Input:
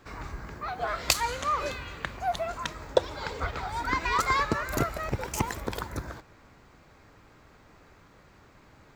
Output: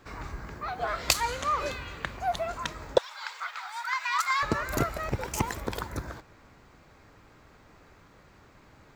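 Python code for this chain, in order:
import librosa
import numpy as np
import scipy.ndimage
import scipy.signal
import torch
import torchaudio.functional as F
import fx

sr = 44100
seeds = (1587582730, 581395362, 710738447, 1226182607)

y = fx.highpass(x, sr, hz=1000.0, slope=24, at=(2.98, 4.43))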